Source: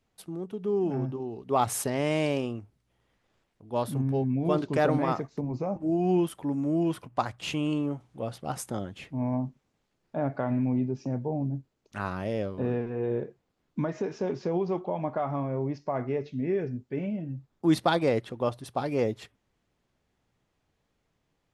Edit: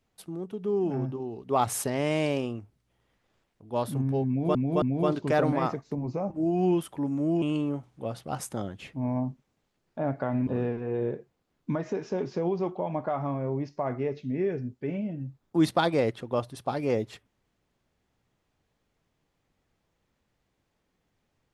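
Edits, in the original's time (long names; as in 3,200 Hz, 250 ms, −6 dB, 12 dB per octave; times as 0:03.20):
0:04.28–0:04.55: repeat, 3 plays
0:06.88–0:07.59: remove
0:10.64–0:12.56: remove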